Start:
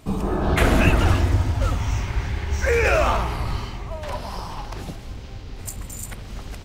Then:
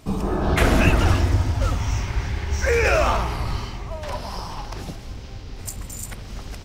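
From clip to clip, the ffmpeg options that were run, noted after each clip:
-af "equalizer=f=5.4k:w=3.1:g=4.5"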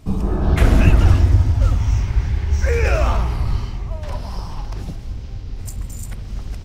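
-af "lowshelf=f=210:g=12,volume=-4dB"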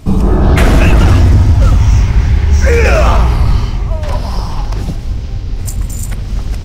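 -af "apsyclip=13dB,volume=-2dB"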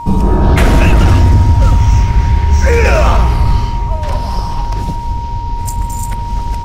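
-af "aeval=exprs='val(0)+0.0891*sin(2*PI*940*n/s)':c=same,volume=-1dB"

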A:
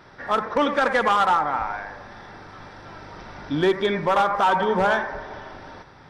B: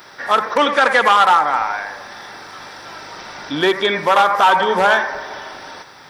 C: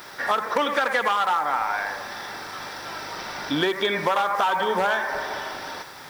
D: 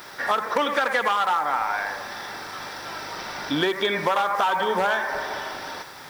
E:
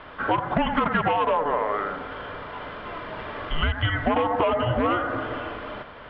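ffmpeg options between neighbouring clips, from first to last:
-filter_complex "[0:a]acrossover=split=4200[a][b];[b]acompressor=threshold=-53dB:ratio=4:attack=1:release=60[c];[a][c]amix=inputs=2:normalize=0,aemphasis=mode=production:type=riaa,volume=7dB"
-af "acompressor=threshold=-20dB:ratio=5,acrusher=bits=7:mix=0:aa=0.000001"
-af anull
-af "highpass=f=160:t=q:w=0.5412,highpass=f=160:t=q:w=1.307,lowpass=f=3.3k:t=q:w=0.5176,lowpass=f=3.3k:t=q:w=0.7071,lowpass=f=3.3k:t=q:w=1.932,afreqshift=-310"

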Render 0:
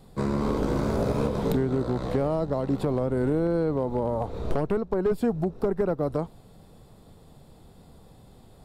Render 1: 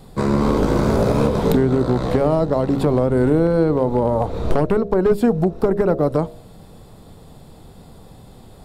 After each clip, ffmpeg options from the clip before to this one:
-af "bandreject=f=68.06:t=h:w=4,bandreject=f=136.12:t=h:w=4,bandreject=f=204.18:t=h:w=4,bandreject=f=272.24:t=h:w=4,bandreject=f=340.3:t=h:w=4,bandreject=f=408.36:t=h:w=4,bandreject=f=476.42:t=h:w=4,bandreject=f=544.48:t=h:w=4,bandreject=f=612.54:t=h:w=4,bandreject=f=680.6:t=h:w=4,volume=9dB"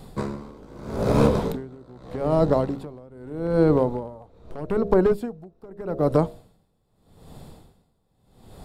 -af "aeval=exprs='val(0)*pow(10,-28*(0.5-0.5*cos(2*PI*0.81*n/s))/20)':c=same"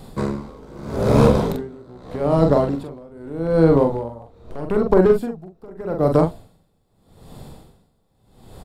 -filter_complex "[0:a]asplit=2[a][b];[b]adelay=43,volume=-5dB[c];[a][c]amix=inputs=2:normalize=0,volume=3dB"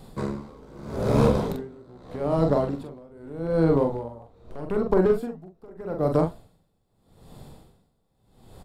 -af "flanger=delay=5:depth=5:regen=-86:speed=1.1:shape=triangular,volume=-1.5dB"

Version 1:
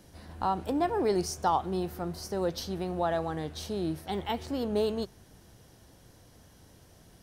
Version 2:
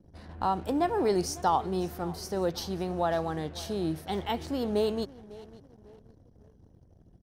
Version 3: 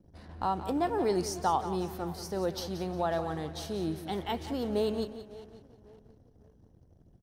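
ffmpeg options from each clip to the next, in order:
-af "aecho=1:1:550|1100|1650:0.106|0.0434|0.0178,anlmdn=0.001,volume=1dB"
-af "aecho=1:1:178|356|534:0.251|0.0854|0.029,volume=-2.5dB"

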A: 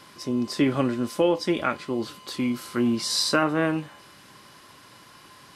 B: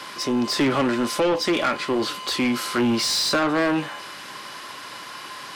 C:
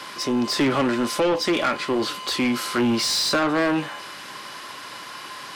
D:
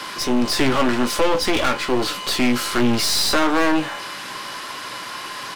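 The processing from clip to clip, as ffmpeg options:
-filter_complex "[0:a]acrossover=split=380[a][b];[b]acompressor=threshold=-27dB:ratio=3[c];[a][c]amix=inputs=2:normalize=0,asplit=2[d][e];[e]highpass=f=720:p=1,volume=21dB,asoftclip=type=tanh:threshold=-13dB[f];[d][f]amix=inputs=2:normalize=0,lowpass=f=5.1k:p=1,volume=-6dB"
-af anull
-filter_complex "[0:a]aeval=exprs='clip(val(0),-1,0.0251)':c=same,asplit=2[a][b];[b]adelay=16,volume=-10.5dB[c];[a][c]amix=inputs=2:normalize=0,volume=5.5dB"

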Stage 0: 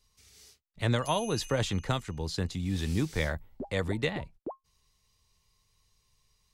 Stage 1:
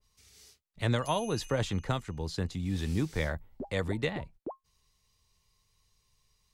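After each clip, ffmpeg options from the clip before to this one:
-af "adynamicequalizer=threshold=0.00398:dfrequency=2100:dqfactor=0.7:tfrequency=2100:tqfactor=0.7:attack=5:release=100:ratio=0.375:range=2:mode=cutabove:tftype=highshelf,volume=-1dB"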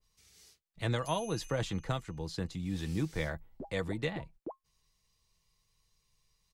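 -af "aecho=1:1:6.1:0.33,volume=-3.5dB"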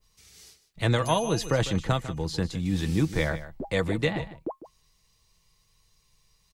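-af "aecho=1:1:151:0.2,volume=8.5dB"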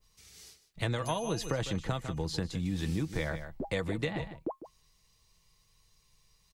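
-af "acompressor=threshold=-27dB:ratio=6,volume=-1.5dB"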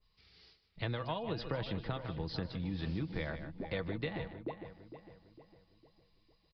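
-filter_complex "[0:a]asplit=2[a][b];[b]adelay=455,lowpass=f=2.6k:p=1,volume=-11dB,asplit=2[c][d];[d]adelay=455,lowpass=f=2.6k:p=1,volume=0.45,asplit=2[e][f];[f]adelay=455,lowpass=f=2.6k:p=1,volume=0.45,asplit=2[g][h];[h]adelay=455,lowpass=f=2.6k:p=1,volume=0.45,asplit=2[i][j];[j]adelay=455,lowpass=f=2.6k:p=1,volume=0.45[k];[c][e][g][i][k]amix=inputs=5:normalize=0[l];[a][l]amix=inputs=2:normalize=0,aresample=11025,aresample=44100,volume=-5dB"

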